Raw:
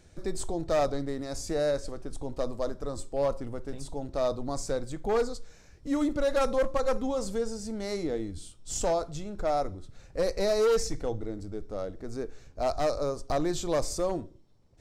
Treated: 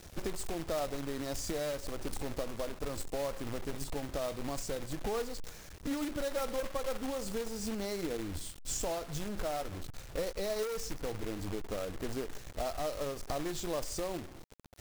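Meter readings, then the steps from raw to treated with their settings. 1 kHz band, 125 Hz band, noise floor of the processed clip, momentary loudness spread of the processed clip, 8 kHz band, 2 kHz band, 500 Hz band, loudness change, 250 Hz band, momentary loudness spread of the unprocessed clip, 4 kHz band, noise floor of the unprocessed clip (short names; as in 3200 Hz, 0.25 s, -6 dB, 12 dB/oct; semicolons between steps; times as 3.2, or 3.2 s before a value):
-7.5 dB, -4.0 dB, -50 dBFS, 6 LU, -2.5 dB, -3.0 dB, -8.0 dB, -7.0 dB, -6.0 dB, 12 LU, -2.0 dB, -55 dBFS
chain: compressor 16:1, threshold -36 dBFS, peak gain reduction 14.5 dB; companded quantiser 4-bit; gain +3 dB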